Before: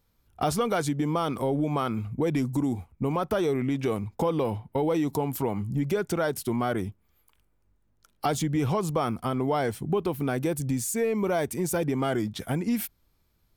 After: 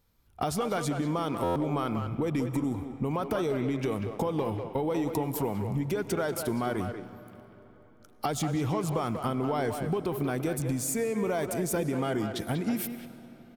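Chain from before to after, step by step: compressor, threshold -26 dBFS, peak gain reduction 5.5 dB; speakerphone echo 0.19 s, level -6 dB; on a send at -13.5 dB: reverb RT60 4.0 s, pre-delay 60 ms; on the sum: stuck buffer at 1.43, samples 512, times 10

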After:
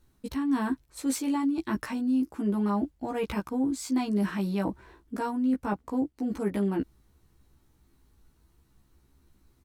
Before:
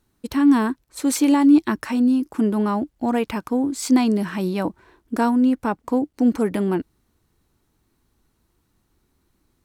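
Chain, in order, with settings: low shelf 90 Hz +9.5 dB; reverse; compressor 4:1, threshold -26 dBFS, peak gain reduction 14 dB; reverse; doubler 15 ms -2 dB; gain -3 dB

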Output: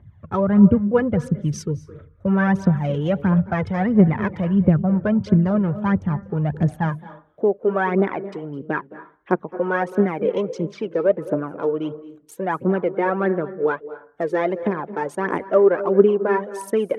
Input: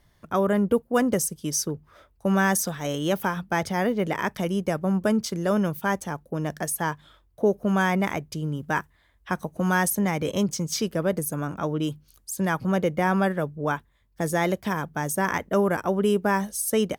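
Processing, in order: Wiener smoothing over 9 samples; phaser 1.5 Hz, delay 2.4 ms, feedback 63%; tone controls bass +10 dB, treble -9 dB; treble ducked by the level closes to 2600 Hz, closed at -15.5 dBFS; reverb RT60 0.40 s, pre-delay 0.206 s, DRR 15.5 dB; high-pass sweep 97 Hz -> 380 Hz, 6.78–7.39; 1.17–2.28 bell 790 Hz -10.5 dB 0.55 oct; gain -1.5 dB

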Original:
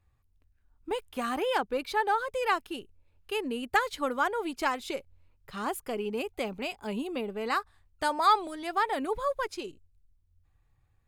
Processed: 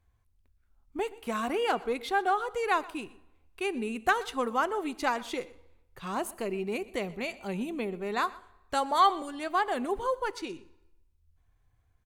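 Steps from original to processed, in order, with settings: reverb RT60 0.85 s, pre-delay 12 ms, DRR 19.5 dB; speed mistake 48 kHz file played as 44.1 kHz; echo 0.123 s -20.5 dB

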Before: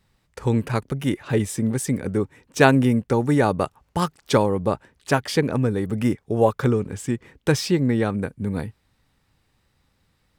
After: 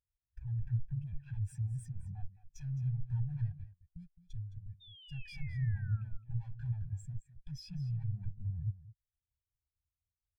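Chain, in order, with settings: minimum comb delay 1.2 ms; 3.52–5.13 passive tone stack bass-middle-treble 6-0-2; sample leveller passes 2; soft clip -32.5 dBFS, distortion -3 dB; compressor 10:1, threshold -48 dBFS, peak gain reduction 14 dB; 4.8–6.03 painted sound fall 1300–3700 Hz -56 dBFS; graphic EQ 250/500/1000 Hz -10/-10/-6 dB; echo 0.214 s -6 dB; spectral expander 2.5:1; gain +10 dB

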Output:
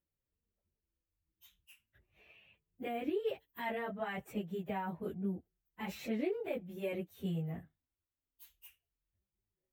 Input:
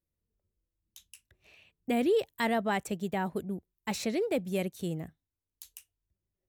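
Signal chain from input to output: band shelf 6600 Hz -13 dB; limiter -25.5 dBFS, peak gain reduction 6.5 dB; plain phase-vocoder stretch 1.5×; gain -1 dB

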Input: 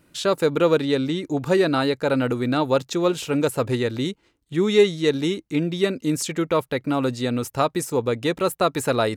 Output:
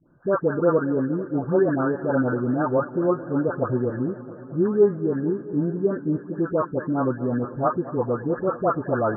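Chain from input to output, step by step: spectral delay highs late, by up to 0.374 s; Chebyshev low-pass 1700 Hz, order 10; warbling echo 0.222 s, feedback 78%, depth 56 cents, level -17 dB

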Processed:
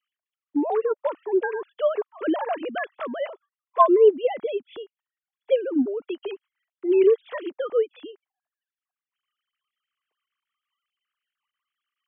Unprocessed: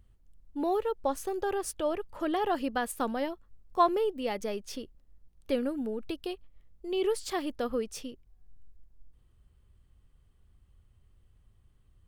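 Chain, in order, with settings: sine-wave speech; gain +8 dB

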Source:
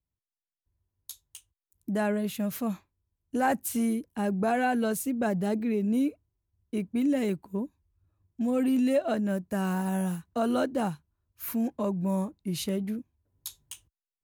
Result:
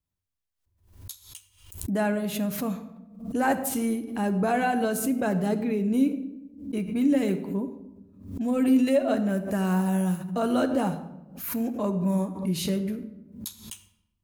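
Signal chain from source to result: on a send at -7.5 dB: reverb RT60 0.95 s, pre-delay 11 ms; on the sum: backwards sustainer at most 99 dB/s; gain +1.5 dB

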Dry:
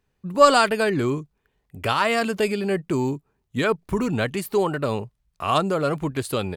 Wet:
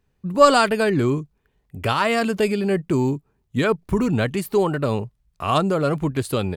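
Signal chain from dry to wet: low shelf 330 Hz +5.5 dB

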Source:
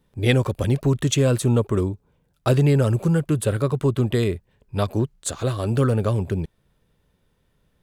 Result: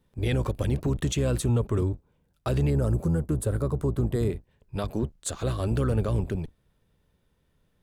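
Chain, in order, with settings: octaver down 1 oct, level -4 dB; 2.7–4.3 bell 2800 Hz -12.5 dB 1.3 oct; limiter -13.5 dBFS, peak gain reduction 9 dB; gain -4 dB

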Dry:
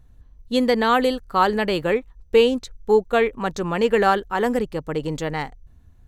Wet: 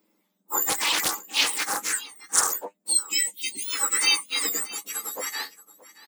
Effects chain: spectrum mirrored in octaves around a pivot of 1900 Hz; in parallel at -2 dB: limiter -15 dBFS, peak gain reduction 8 dB; 2.93–3.68 on the sum: spectral delete 400–1900 Hz; flange 1 Hz, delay 9 ms, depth 1.7 ms, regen +43%; on a send: echo 0.625 s -19 dB; 0.69–2.53 on the sum: Doppler distortion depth 0.44 ms

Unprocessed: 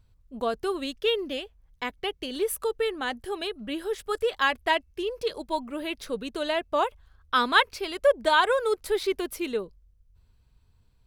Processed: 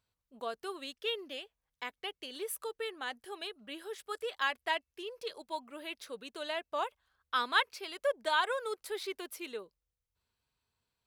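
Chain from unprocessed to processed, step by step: HPF 720 Hz 6 dB/oct; gain -7 dB

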